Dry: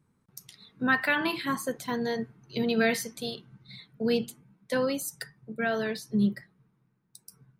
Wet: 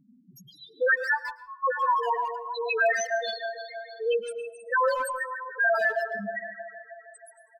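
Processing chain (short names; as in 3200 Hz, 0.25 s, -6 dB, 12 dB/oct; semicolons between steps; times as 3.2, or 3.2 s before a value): regenerating reverse delay 0.158 s, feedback 73%, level -11 dB; 0.94–1.64 gate -22 dBFS, range -29 dB; high-pass sweep 240 Hz -> 920 Hz, 0.5–1.12; loudest bins only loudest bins 2; in parallel at +2 dB: negative-ratio compressor -36 dBFS, ratio -1; on the sum: speakerphone echo 0.15 s, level -9 dB; on a send at -18 dB: reverb RT60 0.60 s, pre-delay 0.109 s; on the sum: gain +5.5 dB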